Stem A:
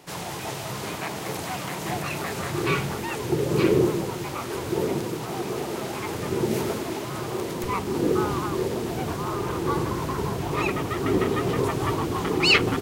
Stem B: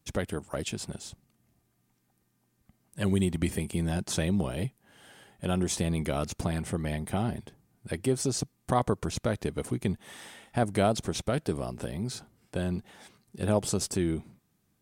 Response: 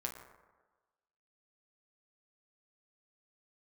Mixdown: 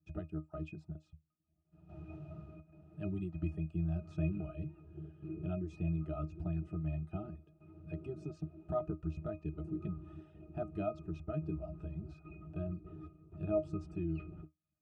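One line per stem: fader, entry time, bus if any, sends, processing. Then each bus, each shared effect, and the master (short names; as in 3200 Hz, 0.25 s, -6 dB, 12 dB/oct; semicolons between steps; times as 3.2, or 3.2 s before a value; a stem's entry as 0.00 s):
-14.0 dB, 1.65 s, send -20.5 dB, high shelf 2000 Hz +9.5 dB; step gate "..xxxxxx.xxxx.xx" 126 bpm -12 dB; tilt -4 dB/oct; auto duck -12 dB, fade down 0.30 s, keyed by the second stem
+0.5 dB, 0.00 s, no send, reverb removal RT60 0.76 s; LPF 7600 Hz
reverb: on, RT60 1.3 s, pre-delay 7 ms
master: octave resonator D#, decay 0.15 s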